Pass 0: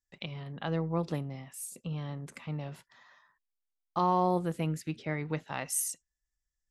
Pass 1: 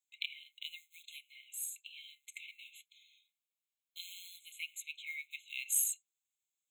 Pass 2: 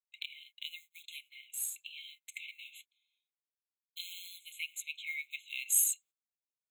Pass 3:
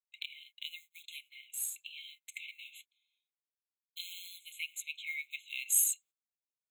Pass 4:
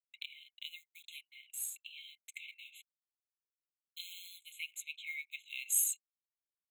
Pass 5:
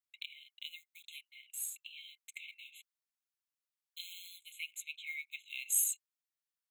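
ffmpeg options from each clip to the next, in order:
-filter_complex "[0:a]acrossover=split=430[a][b];[b]acrusher=bits=6:mode=log:mix=0:aa=0.000001[c];[a][c]amix=inputs=2:normalize=0,afftfilt=real='re*eq(mod(floor(b*sr/1024/2100),2),1)':imag='im*eq(mod(floor(b*sr/1024/2100),2),1)':win_size=1024:overlap=0.75,volume=4dB"
-filter_complex "[0:a]agate=range=-20dB:threshold=-59dB:ratio=16:detection=peak,acrossover=split=4300|6200|7000[a][b][c][d];[a]alimiter=level_in=7dB:limit=-24dB:level=0:latency=1:release=308,volume=-7dB[e];[c]aeval=exprs='val(0)*gte(abs(val(0)),0.00178)':c=same[f];[e][b][f][d]amix=inputs=4:normalize=0,volume=4dB"
-af anull
-af "anlmdn=0.0000251,volume=-3dB"
-af "highpass=f=970:w=0.5412,highpass=f=970:w=1.3066"

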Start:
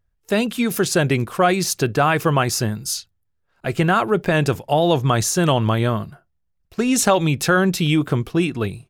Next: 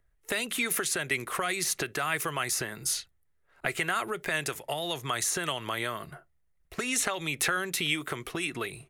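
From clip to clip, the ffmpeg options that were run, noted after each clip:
-filter_complex "[0:a]acrossover=split=260|4200[a][b][c];[a]acompressor=threshold=-32dB:ratio=4[d];[b]acompressor=threshold=-27dB:ratio=4[e];[c]acompressor=threshold=-31dB:ratio=4[f];[d][e][f]amix=inputs=3:normalize=0,equalizer=f=100:t=o:w=0.33:g=-11,equalizer=f=200:t=o:w=0.33:g=-8,equalizer=f=400:t=o:w=0.33:g=4,equalizer=f=630:t=o:w=0.33:g=3,equalizer=f=1.25k:t=o:w=0.33:g=3,equalizer=f=2k:t=o:w=0.33:g=9,equalizer=f=5k:t=o:w=0.33:g=-5,equalizer=f=10k:t=o:w=0.33:g=6,acrossover=split=1100[g][h];[g]acompressor=threshold=-34dB:ratio=6[i];[i][h]amix=inputs=2:normalize=0"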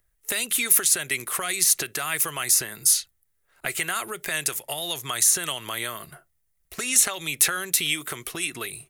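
-af "crystalizer=i=3.5:c=0,volume=-2dB"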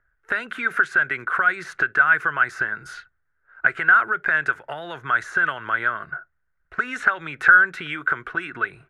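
-af "lowpass=f=1.5k:t=q:w=13"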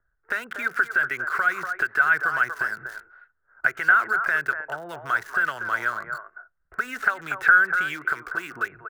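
-filter_complex "[0:a]acrossover=split=380|1700[a][b][c];[a]alimiter=level_in=11.5dB:limit=-24dB:level=0:latency=1:release=253,volume=-11.5dB[d];[b]aecho=1:1:240:0.596[e];[c]aeval=exprs='val(0)*gte(abs(val(0)),0.0133)':c=same[f];[d][e][f]amix=inputs=3:normalize=0,volume=-3dB"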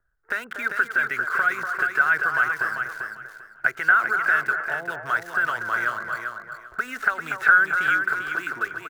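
-af "aecho=1:1:394|788|1182:0.501|0.105|0.0221"

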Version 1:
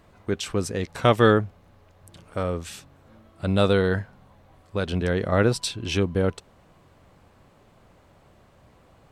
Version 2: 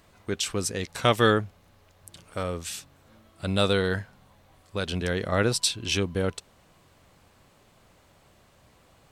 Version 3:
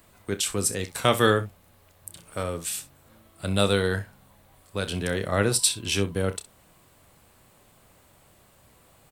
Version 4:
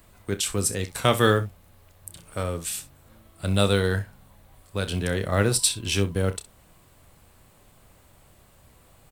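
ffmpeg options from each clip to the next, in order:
-af "highshelf=f=2.3k:g=11,volume=-4.5dB"
-filter_complex "[0:a]acrossover=split=140[a][b];[b]aexciter=amount=3.2:drive=3.9:freq=8k[c];[a][c]amix=inputs=2:normalize=0,aecho=1:1:30|64:0.251|0.15"
-af "acrusher=bits=8:mode=log:mix=0:aa=0.000001,lowshelf=f=79:g=10.5"

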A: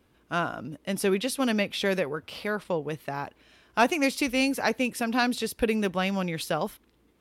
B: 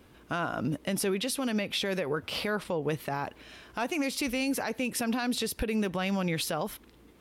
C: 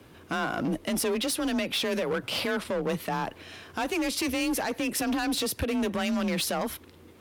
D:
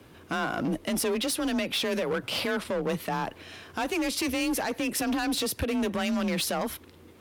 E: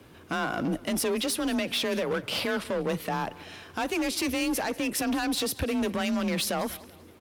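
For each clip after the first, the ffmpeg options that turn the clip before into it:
-af "acompressor=threshold=-30dB:ratio=6,alimiter=level_in=5.5dB:limit=-24dB:level=0:latency=1:release=83,volume=-5.5dB,volume=8dB"
-af "asoftclip=type=hard:threshold=-29dB,afreqshift=29,volume=4.5dB"
-af anull
-af "aecho=1:1:192|384|576:0.1|0.039|0.0152"

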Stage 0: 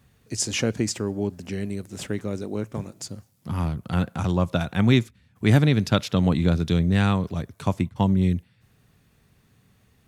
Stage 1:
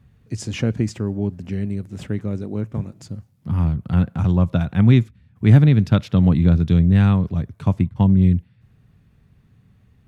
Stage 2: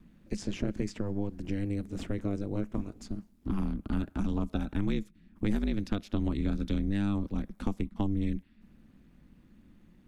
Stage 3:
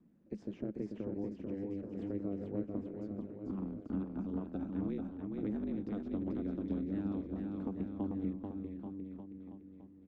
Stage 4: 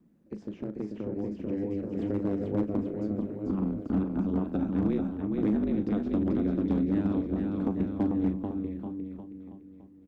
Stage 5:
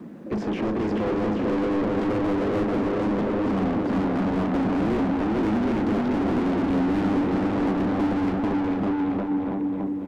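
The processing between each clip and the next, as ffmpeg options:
-af "bass=f=250:g=10,treble=f=4k:g=-9,volume=-2dB"
-filter_complex "[0:a]aeval=exprs='val(0)*sin(2*PI*100*n/s)':c=same,acrossover=split=820|4700[a][b][c];[a]acompressor=threshold=-28dB:ratio=4[d];[b]acompressor=threshold=-46dB:ratio=4[e];[c]acompressor=threshold=-52dB:ratio=4[f];[d][e][f]amix=inputs=3:normalize=0"
-filter_complex "[0:a]bandpass=f=370:t=q:w=0.83:csg=0,asplit=2[a][b];[b]aecho=0:1:440|836|1192|1513|1802:0.631|0.398|0.251|0.158|0.1[c];[a][c]amix=inputs=2:normalize=0,volume=-5dB"
-filter_complex "[0:a]volume=29.5dB,asoftclip=hard,volume=-29.5dB,asplit=2[a][b];[b]adelay=38,volume=-12dB[c];[a][c]amix=inputs=2:normalize=0,dynaudnorm=f=220:g=13:m=6.5dB,volume=3.5dB"
-filter_complex "[0:a]asplit=2[a][b];[b]highpass=f=720:p=1,volume=40dB,asoftclip=type=tanh:threshold=-17.5dB[c];[a][c]amix=inputs=2:normalize=0,lowpass=f=1.1k:p=1,volume=-6dB,aecho=1:1:269|538|807|1076|1345|1614:0.316|0.161|0.0823|0.0419|0.0214|0.0109"

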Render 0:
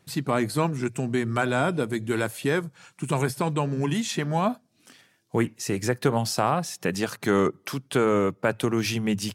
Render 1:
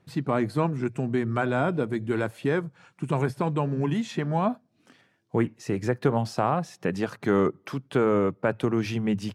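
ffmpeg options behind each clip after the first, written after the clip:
-af "lowpass=f=1.5k:p=1"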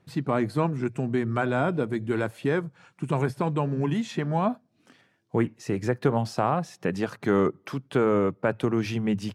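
-af anull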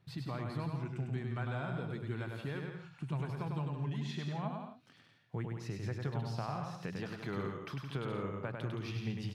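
-filter_complex "[0:a]equalizer=f=125:t=o:w=1:g=8,equalizer=f=250:t=o:w=1:g=-5,equalizer=f=500:t=o:w=1:g=-4,equalizer=f=4k:t=o:w=1:g=6,equalizer=f=8k:t=o:w=1:g=-6,acompressor=threshold=-36dB:ratio=2,asplit=2[a][b];[b]aecho=0:1:100|170|219|253.3|277.3:0.631|0.398|0.251|0.158|0.1[c];[a][c]amix=inputs=2:normalize=0,volume=-7dB"

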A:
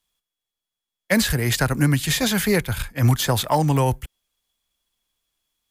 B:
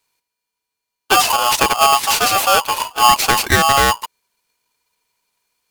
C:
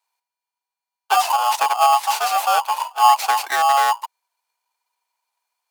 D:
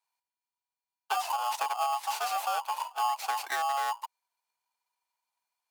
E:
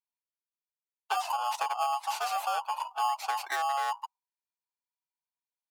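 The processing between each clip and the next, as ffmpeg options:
-af "aeval=exprs='val(0)*sgn(sin(2*PI*970*n/s))':c=same,volume=5.5dB"
-af "highpass=f=800:t=q:w=3.6,volume=-9.5dB"
-af "acompressor=threshold=-20dB:ratio=3,volume=-8dB"
-af "afftdn=nr=17:nf=-48"

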